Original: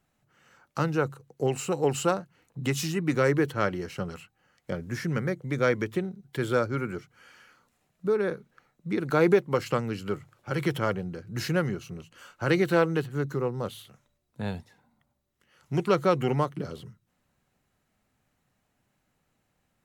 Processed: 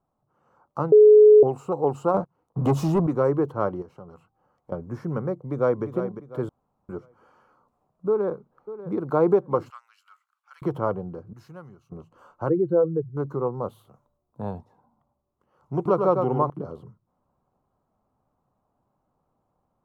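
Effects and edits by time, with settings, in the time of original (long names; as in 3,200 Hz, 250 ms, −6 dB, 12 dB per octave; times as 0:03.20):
0:00.92–0:01.43: beep over 424 Hz −10 dBFS
0:02.14–0:03.07: leveller curve on the samples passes 3
0:03.82–0:04.72: downward compressor 2 to 1, threshold −49 dBFS
0:05.35–0:05.84: delay throw 350 ms, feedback 35%, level −9.5 dB
0:06.49–0:06.89: fill with room tone
0:08.08–0:09.12: delay throw 590 ms, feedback 20%, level −14 dB
0:09.70–0:10.62: inverse Chebyshev high-pass filter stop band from 380 Hz, stop band 70 dB
0:11.33–0:11.92: guitar amp tone stack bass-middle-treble 5-5-5
0:12.49–0:13.17: expanding power law on the bin magnitudes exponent 2.2
0:13.69–0:14.51: high-shelf EQ 11,000 Hz +11 dB
0:15.75–0:16.50: single-tap delay 104 ms −5 dB
whole clip: drawn EQ curve 200 Hz 0 dB, 1,100 Hz +7 dB, 1,800 Hz −18 dB; automatic gain control gain up to 4 dB; level −4.5 dB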